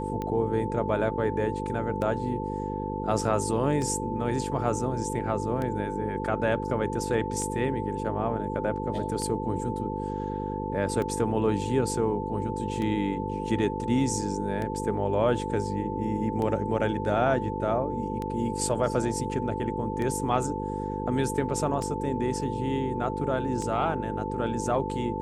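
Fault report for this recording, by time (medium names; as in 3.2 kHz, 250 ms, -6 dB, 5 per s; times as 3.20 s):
buzz 50 Hz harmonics 10 -33 dBFS
tick 33 1/3 rpm -20 dBFS
whine 880 Hz -34 dBFS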